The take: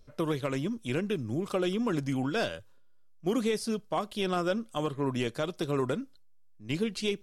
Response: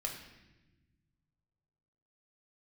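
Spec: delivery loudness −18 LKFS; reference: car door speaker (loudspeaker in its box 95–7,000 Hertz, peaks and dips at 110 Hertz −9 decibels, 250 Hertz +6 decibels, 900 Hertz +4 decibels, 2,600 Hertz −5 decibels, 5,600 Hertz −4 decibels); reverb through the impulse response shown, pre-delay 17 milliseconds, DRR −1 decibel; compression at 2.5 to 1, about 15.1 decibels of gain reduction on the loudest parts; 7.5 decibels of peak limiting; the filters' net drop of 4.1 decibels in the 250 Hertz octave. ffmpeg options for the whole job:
-filter_complex "[0:a]equalizer=frequency=250:width_type=o:gain=-8.5,acompressor=threshold=-51dB:ratio=2.5,alimiter=level_in=14.5dB:limit=-24dB:level=0:latency=1,volume=-14.5dB,asplit=2[link_01][link_02];[1:a]atrim=start_sample=2205,adelay=17[link_03];[link_02][link_03]afir=irnorm=-1:irlink=0,volume=0dB[link_04];[link_01][link_04]amix=inputs=2:normalize=0,highpass=95,equalizer=frequency=110:width_type=q:width=4:gain=-9,equalizer=frequency=250:width_type=q:width=4:gain=6,equalizer=frequency=900:width_type=q:width=4:gain=4,equalizer=frequency=2600:width_type=q:width=4:gain=-5,equalizer=frequency=5600:width_type=q:width=4:gain=-4,lowpass=frequency=7000:width=0.5412,lowpass=frequency=7000:width=1.3066,volume=28dB"

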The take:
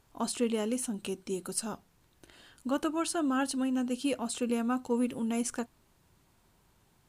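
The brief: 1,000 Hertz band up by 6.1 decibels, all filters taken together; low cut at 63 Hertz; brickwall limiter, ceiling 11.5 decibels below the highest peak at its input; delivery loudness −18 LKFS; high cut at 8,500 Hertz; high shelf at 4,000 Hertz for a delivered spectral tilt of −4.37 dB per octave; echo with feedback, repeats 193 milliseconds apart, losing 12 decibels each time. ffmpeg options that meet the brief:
ffmpeg -i in.wav -af "highpass=63,lowpass=8500,equalizer=frequency=1000:width_type=o:gain=8.5,highshelf=frequency=4000:gain=-6.5,alimiter=level_in=3.5dB:limit=-24dB:level=0:latency=1,volume=-3.5dB,aecho=1:1:193|386|579:0.251|0.0628|0.0157,volume=18dB" out.wav

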